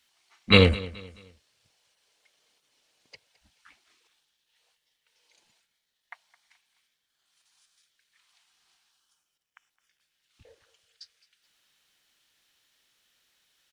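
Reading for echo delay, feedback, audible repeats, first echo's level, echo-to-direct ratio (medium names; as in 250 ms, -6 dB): 214 ms, 36%, 2, -19.0 dB, -18.5 dB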